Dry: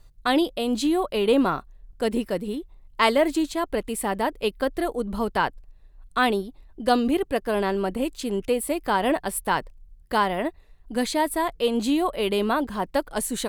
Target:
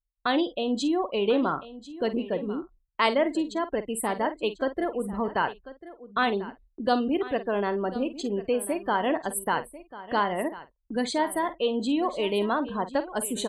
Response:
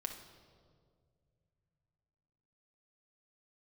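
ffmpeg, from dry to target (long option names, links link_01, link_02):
-filter_complex "[0:a]afftdn=noise_reduction=32:noise_floor=-35,highpass=frequency=140:poles=1,agate=range=-22dB:threshold=-54dB:ratio=16:detection=peak,asplit=2[link_01][link_02];[link_02]acompressor=threshold=-32dB:ratio=6,volume=3dB[link_03];[link_01][link_03]amix=inputs=2:normalize=0,asplit=2[link_04][link_05];[link_05]adelay=49,volume=-13dB[link_06];[link_04][link_06]amix=inputs=2:normalize=0,aecho=1:1:1044:0.158,volume=-5.5dB"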